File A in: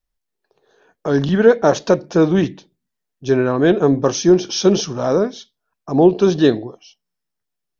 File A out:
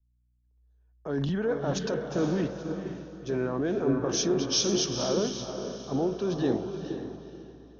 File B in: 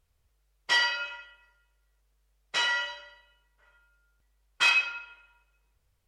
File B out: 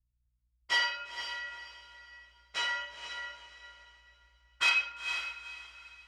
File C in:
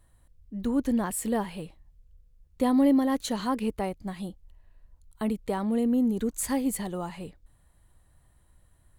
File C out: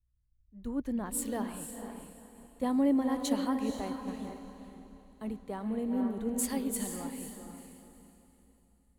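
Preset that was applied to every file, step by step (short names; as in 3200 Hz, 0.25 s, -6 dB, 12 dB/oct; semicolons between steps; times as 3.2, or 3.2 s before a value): hum 60 Hz, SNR 32 dB; limiter -13 dBFS; on a send: diffused feedback echo 0.48 s, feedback 51%, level -4 dB; on the sum: three-band expander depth 70%; gain -8 dB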